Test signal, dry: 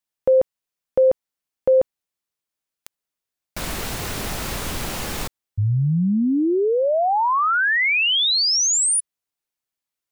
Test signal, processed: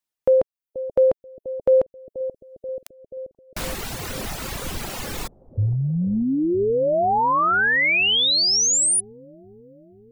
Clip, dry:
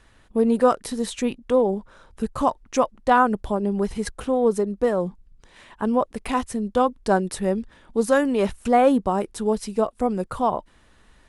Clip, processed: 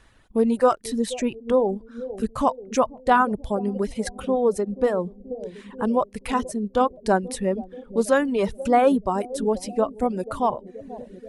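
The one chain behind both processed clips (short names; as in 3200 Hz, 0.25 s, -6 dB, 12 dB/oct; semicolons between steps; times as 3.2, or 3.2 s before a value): analogue delay 0.482 s, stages 2048, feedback 70%, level -12 dB; reverb removal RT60 1.2 s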